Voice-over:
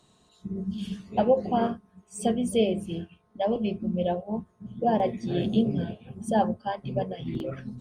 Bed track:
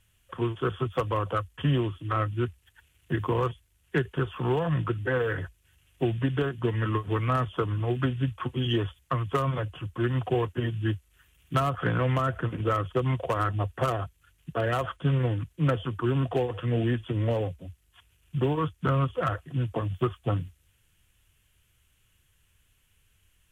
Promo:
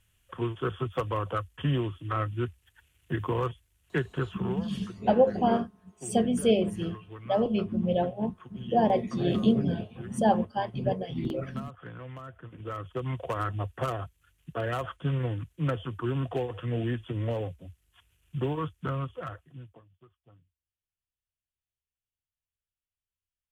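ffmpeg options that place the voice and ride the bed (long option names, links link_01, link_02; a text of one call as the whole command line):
ffmpeg -i stem1.wav -i stem2.wav -filter_complex "[0:a]adelay=3900,volume=0.5dB[link_01];[1:a]volume=10.5dB,afade=type=out:start_time=4.27:duration=0.39:silence=0.188365,afade=type=in:start_time=12.43:duration=0.91:silence=0.223872,afade=type=out:start_time=18.55:duration=1.3:silence=0.0398107[link_02];[link_01][link_02]amix=inputs=2:normalize=0" out.wav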